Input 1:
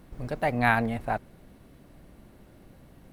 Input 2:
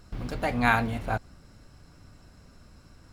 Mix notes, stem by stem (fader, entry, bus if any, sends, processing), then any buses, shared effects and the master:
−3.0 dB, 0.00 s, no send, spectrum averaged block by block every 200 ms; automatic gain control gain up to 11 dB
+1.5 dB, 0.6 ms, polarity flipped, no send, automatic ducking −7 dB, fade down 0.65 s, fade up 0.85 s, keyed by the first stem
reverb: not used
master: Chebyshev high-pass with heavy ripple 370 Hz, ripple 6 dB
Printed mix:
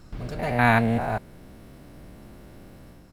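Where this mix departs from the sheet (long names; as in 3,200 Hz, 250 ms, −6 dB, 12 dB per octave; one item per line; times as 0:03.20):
stem 2: polarity flipped
master: missing Chebyshev high-pass with heavy ripple 370 Hz, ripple 6 dB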